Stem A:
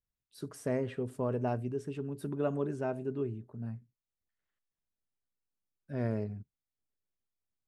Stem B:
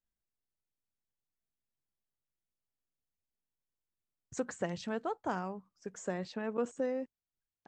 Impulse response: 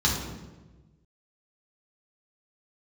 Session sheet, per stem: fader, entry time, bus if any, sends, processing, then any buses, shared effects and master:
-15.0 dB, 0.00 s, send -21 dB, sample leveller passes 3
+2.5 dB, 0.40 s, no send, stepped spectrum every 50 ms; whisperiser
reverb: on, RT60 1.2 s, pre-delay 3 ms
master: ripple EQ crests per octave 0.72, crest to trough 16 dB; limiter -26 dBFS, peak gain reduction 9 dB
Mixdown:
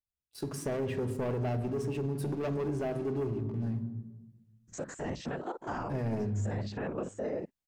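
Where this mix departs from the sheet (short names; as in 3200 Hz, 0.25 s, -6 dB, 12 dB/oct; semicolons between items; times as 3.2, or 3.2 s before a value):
stem A -15.0 dB -> -4.0 dB; master: missing ripple EQ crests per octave 0.72, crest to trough 16 dB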